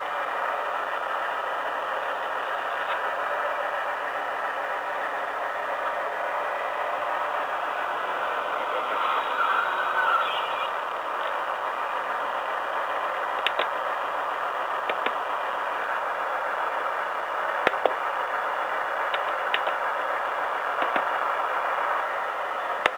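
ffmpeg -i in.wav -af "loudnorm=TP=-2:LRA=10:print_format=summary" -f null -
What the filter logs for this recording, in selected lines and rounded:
Input Integrated:    -26.9 LUFS
Input True Peak:      -5.1 dBTP
Input LRA:             2.6 LU
Input Threshold:     -36.9 LUFS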